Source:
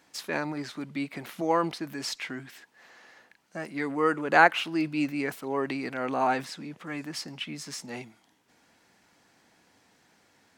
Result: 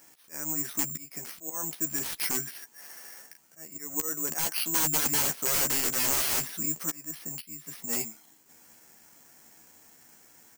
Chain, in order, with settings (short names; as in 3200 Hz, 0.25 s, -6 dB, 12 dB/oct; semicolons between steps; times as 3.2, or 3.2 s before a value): auto swell 0.586 s; wrapped overs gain 28 dB; doubler 13 ms -6 dB; careless resampling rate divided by 6×, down filtered, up zero stuff